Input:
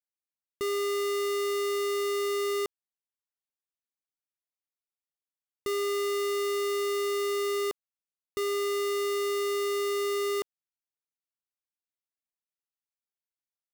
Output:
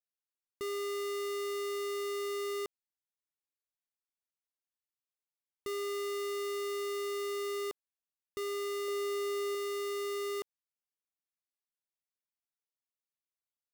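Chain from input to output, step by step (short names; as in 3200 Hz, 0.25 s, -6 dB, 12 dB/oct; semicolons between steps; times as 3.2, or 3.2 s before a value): 8.88–9.55 bell 600 Hz +10.5 dB 0.51 oct; gain -7 dB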